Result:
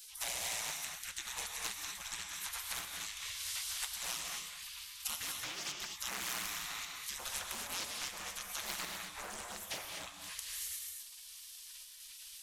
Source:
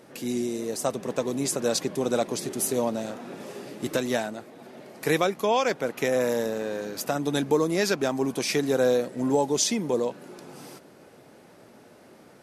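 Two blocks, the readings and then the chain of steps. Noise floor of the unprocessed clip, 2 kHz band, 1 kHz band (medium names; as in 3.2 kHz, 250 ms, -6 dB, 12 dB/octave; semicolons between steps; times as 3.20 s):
-53 dBFS, -8.5 dB, -15.0 dB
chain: wow and flutter 50 cents; treble shelf 3.7 kHz -8.5 dB; compression 12:1, threshold -36 dBFS, peak gain reduction 19 dB; spectral gate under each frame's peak -30 dB weak; treble shelf 8.7 kHz +11 dB; square tremolo 1 Hz, depth 60%, duty 85%; gated-style reverb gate 270 ms rising, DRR 2 dB; loudspeaker Doppler distortion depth 0.68 ms; trim +16.5 dB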